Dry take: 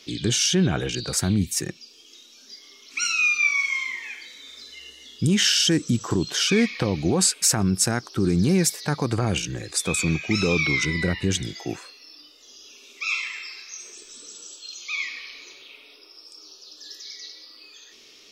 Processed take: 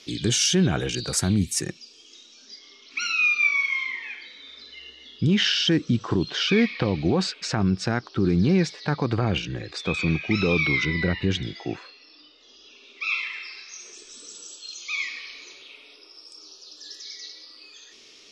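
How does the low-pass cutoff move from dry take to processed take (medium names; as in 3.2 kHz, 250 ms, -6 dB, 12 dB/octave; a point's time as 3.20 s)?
low-pass 24 dB/octave
1.44 s 12 kHz
3.10 s 4.4 kHz
13.30 s 4.4 kHz
14.43 s 9.8 kHz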